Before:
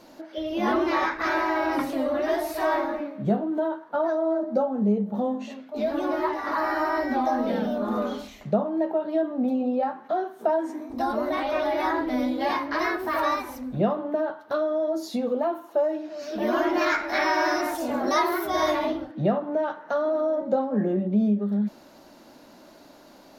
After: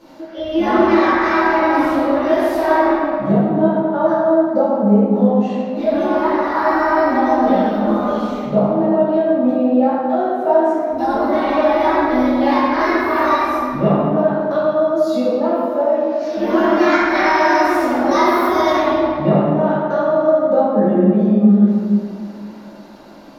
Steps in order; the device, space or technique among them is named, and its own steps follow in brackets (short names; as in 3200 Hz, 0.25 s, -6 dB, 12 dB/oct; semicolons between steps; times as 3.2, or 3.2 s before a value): swimming-pool hall (reverb RT60 2.3 s, pre-delay 3 ms, DRR -10 dB; high shelf 5700 Hz -6.5 dB); gain -1 dB